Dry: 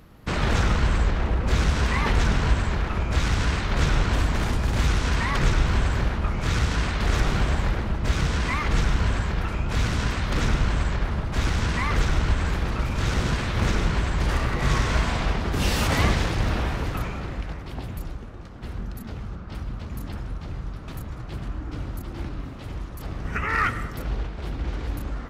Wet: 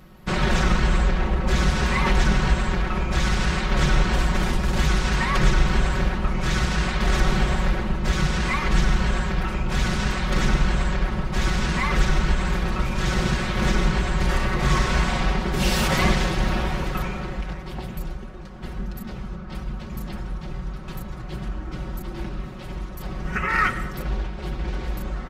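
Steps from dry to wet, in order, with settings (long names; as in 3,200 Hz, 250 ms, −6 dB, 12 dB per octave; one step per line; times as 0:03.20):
comb filter 5.4 ms, depth 87%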